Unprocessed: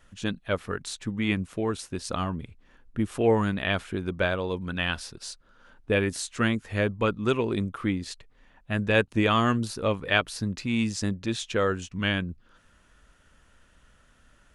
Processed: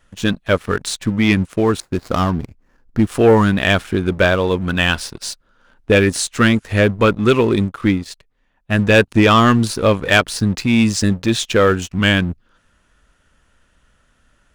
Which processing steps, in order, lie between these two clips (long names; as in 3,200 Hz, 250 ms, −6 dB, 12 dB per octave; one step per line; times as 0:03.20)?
0:01.80–0:03.07: running median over 15 samples
leveller curve on the samples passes 2
0:07.56–0:08.78: expander for the loud parts 1.5 to 1, over −32 dBFS
level +5 dB